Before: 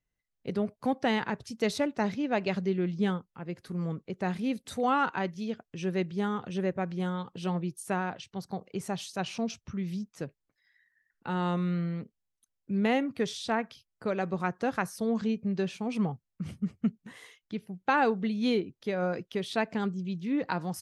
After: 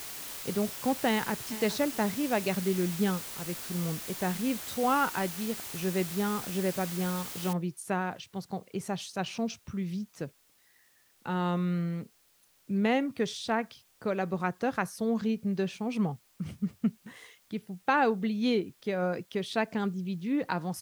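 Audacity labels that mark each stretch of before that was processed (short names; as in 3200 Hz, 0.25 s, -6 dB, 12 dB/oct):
1.090000	1.510000	echo throw 0.42 s, feedback 30%, level -15 dB
7.530000	7.530000	noise floor step -41 dB -66 dB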